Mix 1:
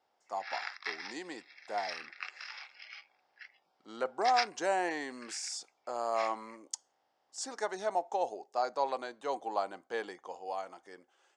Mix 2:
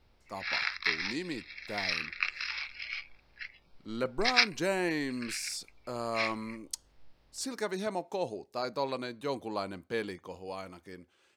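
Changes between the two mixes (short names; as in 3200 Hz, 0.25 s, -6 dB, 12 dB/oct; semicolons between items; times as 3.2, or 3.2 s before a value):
background +5.5 dB; master: remove speaker cabinet 470–8000 Hz, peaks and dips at 770 Hz +10 dB, 2400 Hz -8 dB, 4100 Hz -8 dB, 6900 Hz +3 dB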